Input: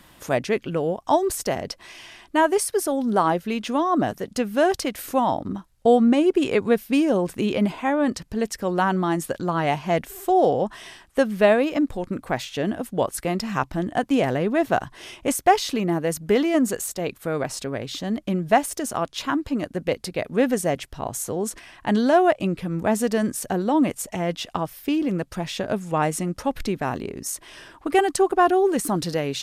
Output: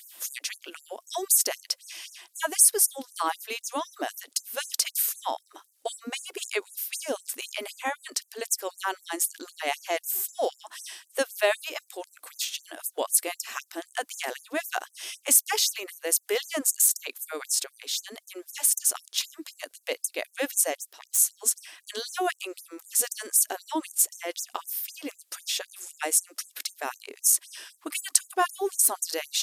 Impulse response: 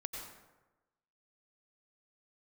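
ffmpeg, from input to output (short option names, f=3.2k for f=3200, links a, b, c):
-filter_complex "[0:a]asettb=1/sr,asplit=3[a][b][c];[a]atrim=end=20.754[d];[b]atrim=start=20.75:end=21.18,asetpts=PTS-STARTPTS,afade=t=in:d=0.004:c=qsin,afade=t=out:st=0.426:d=0.004:c=qsin,aeval=exprs='(tanh(17.8*val(0)+0.6)-tanh(0.6))/17.8':c=same[e];[c]atrim=start=21.176[f];[d][e]acrossfade=d=0.004:c1=hsin:c2=qsin[g];[g][f]acrossfade=d=0.004:c1=qsin:c2=hsin,crystalizer=i=6:c=0,afftfilt=real='re*gte(b*sr/1024,250*pow(6100/250,0.5+0.5*sin(2*PI*3.9*pts/sr)))':imag='im*gte(b*sr/1024,250*pow(6100/250,0.5+0.5*sin(2*PI*3.9*pts/sr)))':win_size=1024:overlap=0.75,volume=-8dB"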